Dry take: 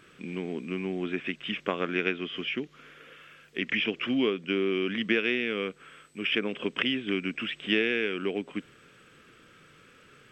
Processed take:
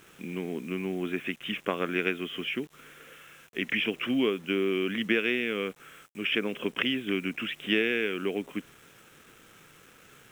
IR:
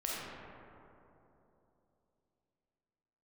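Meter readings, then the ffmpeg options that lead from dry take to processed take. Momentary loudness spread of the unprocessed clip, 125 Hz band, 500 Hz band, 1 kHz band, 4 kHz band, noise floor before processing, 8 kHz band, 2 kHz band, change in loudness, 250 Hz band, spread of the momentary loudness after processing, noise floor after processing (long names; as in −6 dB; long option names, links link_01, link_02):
12 LU, 0.0 dB, 0.0 dB, 0.0 dB, −0.5 dB, −57 dBFS, can't be measured, 0.0 dB, 0.0 dB, 0.0 dB, 13 LU, −56 dBFS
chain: -af "acrusher=bits=8:mix=0:aa=0.000001,equalizer=frequency=4600:width_type=o:width=0.33:gain=-8.5"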